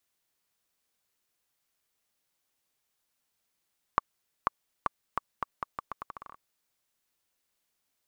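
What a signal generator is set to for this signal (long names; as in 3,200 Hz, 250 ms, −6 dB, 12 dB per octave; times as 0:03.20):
bouncing ball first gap 0.49 s, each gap 0.8, 1,130 Hz, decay 17 ms −8.5 dBFS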